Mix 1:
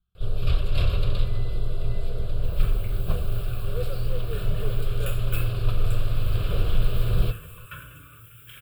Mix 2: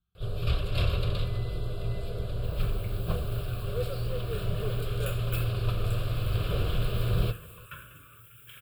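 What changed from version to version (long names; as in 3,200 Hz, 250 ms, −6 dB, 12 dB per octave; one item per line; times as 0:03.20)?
second sound: send −11.0 dB
master: add high-pass filter 70 Hz 6 dB per octave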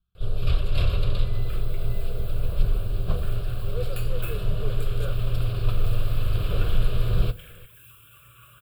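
second sound: entry −1.10 s
master: remove high-pass filter 70 Hz 6 dB per octave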